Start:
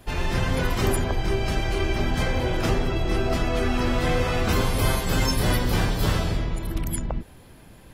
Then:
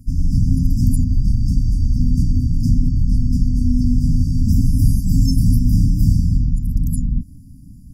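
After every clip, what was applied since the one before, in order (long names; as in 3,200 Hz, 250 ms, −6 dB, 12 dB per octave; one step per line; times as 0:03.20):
brick-wall band-stop 300–4,600 Hz
tilt shelving filter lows +6.5 dB, about 650 Hz
level +3.5 dB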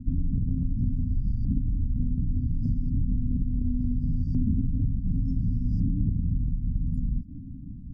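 downward compressor, threshold −23 dBFS, peak gain reduction 14.5 dB
auto-filter low-pass saw up 0.69 Hz 250–2,600 Hz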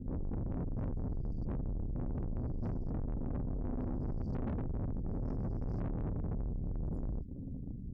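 tube saturation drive 35 dB, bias 0.65
level +1 dB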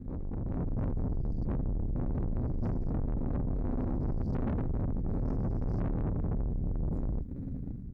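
running median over 41 samples
automatic gain control gain up to 5 dB
single-tap delay 79 ms −21.5 dB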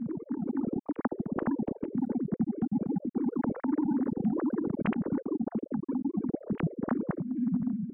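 three sine waves on the formant tracks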